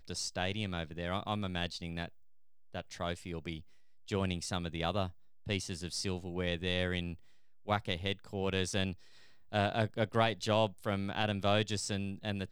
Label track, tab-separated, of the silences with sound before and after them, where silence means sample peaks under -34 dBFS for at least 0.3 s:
2.060000	2.750000	silence
3.570000	4.110000	silence
5.070000	5.470000	silence
7.120000	7.690000	silence
8.920000	9.530000	silence